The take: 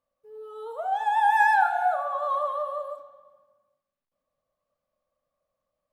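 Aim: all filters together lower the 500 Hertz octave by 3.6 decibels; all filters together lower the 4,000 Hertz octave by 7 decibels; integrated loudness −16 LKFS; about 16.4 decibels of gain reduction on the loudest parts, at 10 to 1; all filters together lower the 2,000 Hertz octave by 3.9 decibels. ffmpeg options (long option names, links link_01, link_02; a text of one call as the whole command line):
ffmpeg -i in.wav -af "equalizer=frequency=500:width_type=o:gain=-4.5,equalizer=frequency=2000:width_type=o:gain=-3.5,equalizer=frequency=4000:width_type=o:gain=-7.5,acompressor=threshold=-36dB:ratio=10,volume=24dB" out.wav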